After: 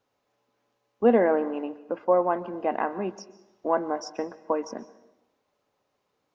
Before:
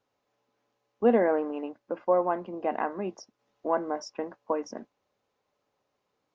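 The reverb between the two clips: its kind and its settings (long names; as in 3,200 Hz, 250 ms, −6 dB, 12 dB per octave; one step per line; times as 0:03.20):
dense smooth reverb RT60 0.95 s, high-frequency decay 0.8×, pre-delay 115 ms, DRR 17 dB
level +2.5 dB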